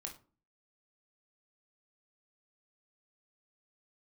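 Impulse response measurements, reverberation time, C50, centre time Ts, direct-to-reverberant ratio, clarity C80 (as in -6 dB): 0.40 s, 10.5 dB, 14 ms, 1.5 dB, 17.5 dB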